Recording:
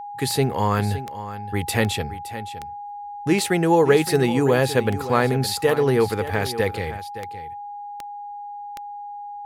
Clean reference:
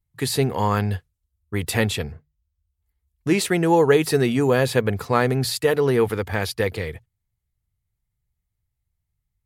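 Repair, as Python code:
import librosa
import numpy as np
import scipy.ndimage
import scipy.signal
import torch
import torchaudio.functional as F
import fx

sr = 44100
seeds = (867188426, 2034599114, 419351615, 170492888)

y = fx.fix_declick_ar(x, sr, threshold=10.0)
y = fx.notch(y, sr, hz=820.0, q=30.0)
y = fx.fix_echo_inverse(y, sr, delay_ms=566, level_db=-13.5)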